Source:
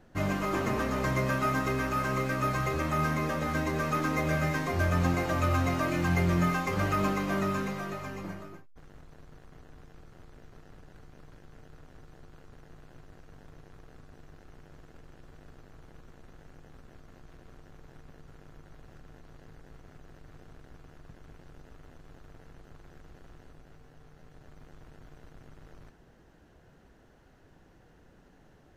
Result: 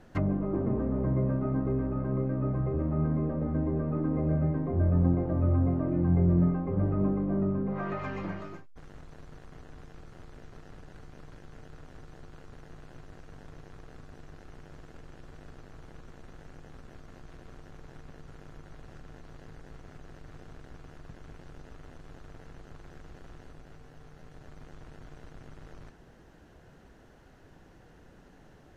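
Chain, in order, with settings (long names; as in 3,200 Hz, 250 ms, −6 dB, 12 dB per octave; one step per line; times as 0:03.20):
treble cut that deepens with the level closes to 420 Hz, closed at −27.5 dBFS
level +3.5 dB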